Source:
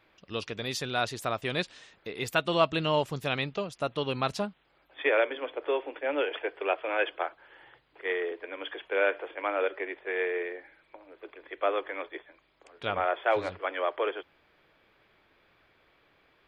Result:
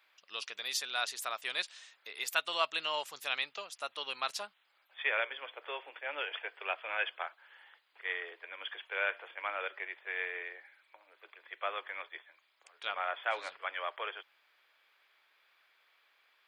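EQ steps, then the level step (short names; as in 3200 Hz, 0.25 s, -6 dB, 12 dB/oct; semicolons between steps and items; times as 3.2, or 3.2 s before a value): HPF 1000 Hz 12 dB/oct; high shelf 4700 Hz +8 dB; -3.5 dB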